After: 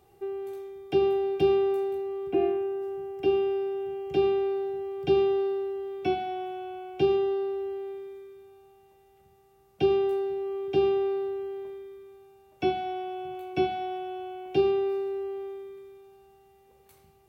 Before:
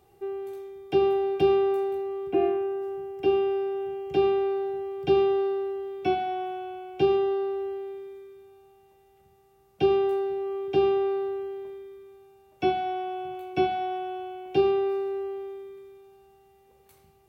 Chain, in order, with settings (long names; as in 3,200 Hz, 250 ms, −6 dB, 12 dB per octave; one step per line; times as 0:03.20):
dynamic equaliser 1,100 Hz, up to −5 dB, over −39 dBFS, Q 0.73